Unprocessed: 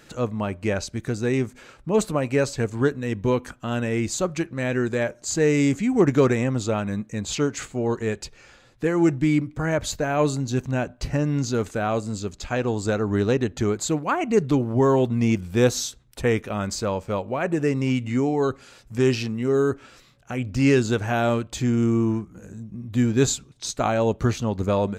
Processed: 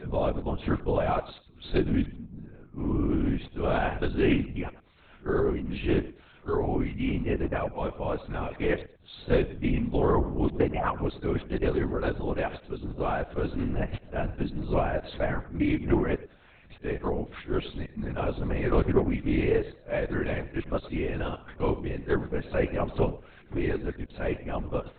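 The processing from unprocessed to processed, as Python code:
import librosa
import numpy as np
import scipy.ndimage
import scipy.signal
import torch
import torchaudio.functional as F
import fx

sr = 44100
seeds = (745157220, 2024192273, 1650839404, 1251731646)

y = x[::-1].copy()
y = fx.peak_eq(y, sr, hz=740.0, db=2.5, octaves=0.77)
y = fx.echo_feedback(y, sr, ms=107, feedback_pct=19, wet_db=-17)
y = fx.lpc_vocoder(y, sr, seeds[0], excitation='whisper', order=10)
y = fx.doppler_dist(y, sr, depth_ms=0.19)
y = F.gain(torch.from_numpy(y), -5.5).numpy()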